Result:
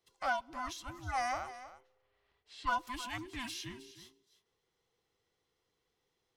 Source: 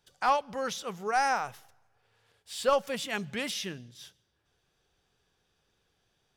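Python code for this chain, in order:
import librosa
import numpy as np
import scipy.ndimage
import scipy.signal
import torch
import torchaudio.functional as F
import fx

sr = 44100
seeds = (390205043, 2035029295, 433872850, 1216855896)

y = fx.band_invert(x, sr, width_hz=500)
y = fx.lowpass(y, sr, hz=3700.0, slope=12, at=(1.49, 2.67))
y = y + 10.0 ** (-14.5 / 20.0) * np.pad(y, (int(314 * sr / 1000.0), 0))[:len(y)]
y = F.gain(torch.from_numpy(y), -8.0).numpy()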